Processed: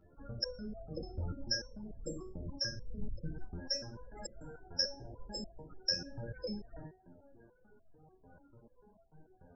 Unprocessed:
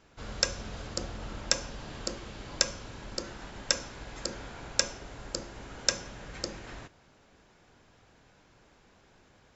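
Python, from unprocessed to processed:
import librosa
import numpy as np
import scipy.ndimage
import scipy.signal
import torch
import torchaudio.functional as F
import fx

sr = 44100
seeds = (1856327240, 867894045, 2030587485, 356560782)

y = fx.dmg_wind(x, sr, seeds[0], corner_hz=100.0, level_db=-31.0, at=(1.12, 3.55), fade=0.02)
y = fx.rider(y, sr, range_db=5, speed_s=0.5)
y = fx.spec_topn(y, sr, count=16)
y = fx.resonator_held(y, sr, hz=6.8, low_hz=87.0, high_hz=670.0)
y = y * 10.0 ** (10.5 / 20.0)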